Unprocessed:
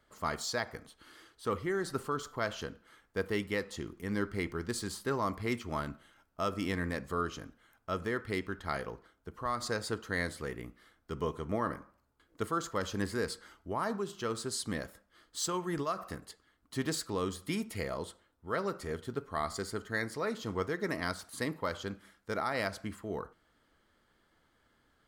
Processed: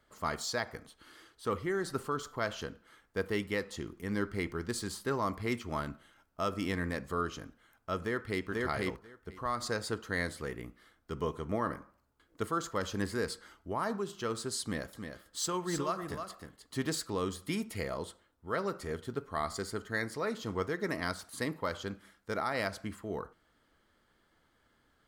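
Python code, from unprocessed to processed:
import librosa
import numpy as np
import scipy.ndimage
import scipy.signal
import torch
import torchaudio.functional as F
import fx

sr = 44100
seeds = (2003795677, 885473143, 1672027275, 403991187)

y = fx.echo_throw(x, sr, start_s=8.02, length_s=0.45, ms=490, feedback_pct=10, wet_db=-0.5)
y = fx.echo_single(y, sr, ms=310, db=-7.0, at=(14.62, 16.85))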